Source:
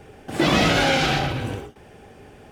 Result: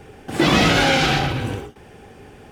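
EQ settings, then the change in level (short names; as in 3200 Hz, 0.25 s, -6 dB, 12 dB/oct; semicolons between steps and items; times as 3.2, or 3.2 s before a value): bell 620 Hz -5 dB 0.24 oct; +3.0 dB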